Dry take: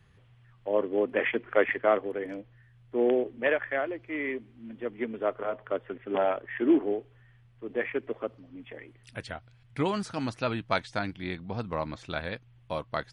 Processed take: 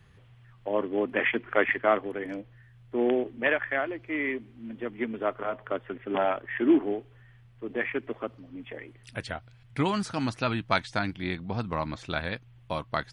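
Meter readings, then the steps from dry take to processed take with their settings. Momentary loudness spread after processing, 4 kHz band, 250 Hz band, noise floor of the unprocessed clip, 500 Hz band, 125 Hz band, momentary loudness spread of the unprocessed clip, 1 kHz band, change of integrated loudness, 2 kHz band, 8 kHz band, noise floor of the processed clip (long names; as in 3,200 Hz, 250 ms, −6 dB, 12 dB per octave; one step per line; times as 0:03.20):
14 LU, +3.5 dB, +2.0 dB, −59 dBFS, −1.0 dB, +3.5 dB, 17 LU, +2.5 dB, +1.0 dB, +3.5 dB, can't be measured, −55 dBFS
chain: dynamic equaliser 490 Hz, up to −7 dB, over −40 dBFS, Q 1.8
level +3.5 dB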